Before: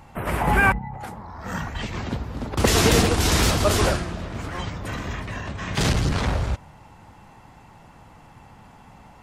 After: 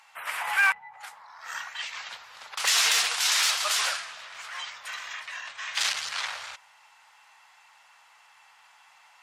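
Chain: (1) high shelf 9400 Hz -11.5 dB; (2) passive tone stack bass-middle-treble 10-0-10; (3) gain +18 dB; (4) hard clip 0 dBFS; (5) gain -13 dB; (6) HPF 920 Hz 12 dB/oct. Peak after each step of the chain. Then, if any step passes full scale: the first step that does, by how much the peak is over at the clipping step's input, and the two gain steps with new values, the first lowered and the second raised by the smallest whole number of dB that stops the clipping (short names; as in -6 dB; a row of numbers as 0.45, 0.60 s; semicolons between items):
-5.0, -13.5, +4.5, 0.0, -13.0, -10.5 dBFS; step 3, 4.5 dB; step 3 +13 dB, step 5 -8 dB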